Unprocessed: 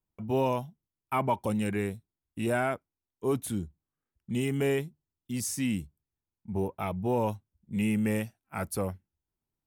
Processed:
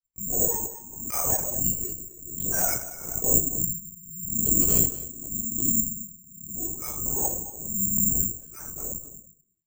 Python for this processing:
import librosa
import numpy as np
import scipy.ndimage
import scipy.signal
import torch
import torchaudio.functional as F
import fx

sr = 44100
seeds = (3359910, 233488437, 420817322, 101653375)

p1 = fx.bin_expand(x, sr, power=2.0)
p2 = scipy.signal.sosfilt(scipy.signal.butter(4, 60.0, 'highpass', fs=sr, output='sos'), p1)
p3 = fx.hum_notches(p2, sr, base_hz=60, count=2)
p4 = fx.dynamic_eq(p3, sr, hz=160.0, q=3.5, threshold_db=-50.0, ratio=4.0, max_db=6)
p5 = fx.level_steps(p4, sr, step_db=20)
p6 = p4 + (p5 * librosa.db_to_amplitude(-1.0))
p7 = fx.pitch_keep_formants(p6, sr, semitones=10.5)
p8 = fx.air_absorb(p7, sr, metres=79.0)
p9 = p8 + fx.echo_single(p8, sr, ms=225, db=-14.0, dry=0)
p10 = fx.room_shoebox(p9, sr, seeds[0], volume_m3=300.0, walls='furnished', distance_m=5.9)
p11 = fx.lpc_vocoder(p10, sr, seeds[1], excitation='whisper', order=10)
p12 = (np.kron(scipy.signal.resample_poly(p11, 1, 6), np.eye(6)[0]) * 6)[:len(p11)]
p13 = fx.pre_swell(p12, sr, db_per_s=59.0)
y = p13 * librosa.db_to_amplitude(-15.0)